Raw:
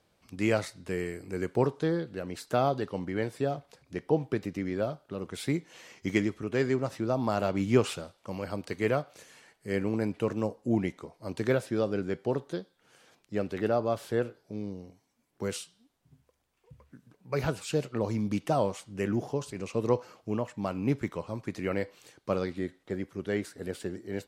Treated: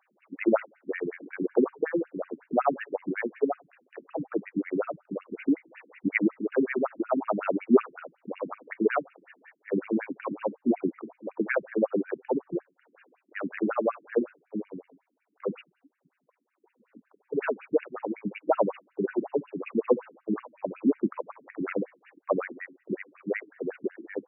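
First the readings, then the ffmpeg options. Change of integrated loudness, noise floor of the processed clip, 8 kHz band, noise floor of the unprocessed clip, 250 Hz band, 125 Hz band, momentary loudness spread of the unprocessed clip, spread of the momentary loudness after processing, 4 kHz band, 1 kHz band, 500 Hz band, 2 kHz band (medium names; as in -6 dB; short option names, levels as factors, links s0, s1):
+1.5 dB, -77 dBFS, under -35 dB, -72 dBFS, +2.0 dB, -11.0 dB, 11 LU, 12 LU, under -10 dB, +1.5 dB, +1.5 dB, +3.0 dB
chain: -af "bandreject=f=68.26:t=h:w=4,bandreject=f=136.52:t=h:w=4,afftfilt=real='re*between(b*sr/1024,240*pow(2100/240,0.5+0.5*sin(2*PI*5.4*pts/sr))/1.41,240*pow(2100/240,0.5+0.5*sin(2*PI*5.4*pts/sr))*1.41)':imag='im*between(b*sr/1024,240*pow(2100/240,0.5+0.5*sin(2*PI*5.4*pts/sr))/1.41,240*pow(2100/240,0.5+0.5*sin(2*PI*5.4*pts/sr))*1.41)':win_size=1024:overlap=0.75,volume=2.66"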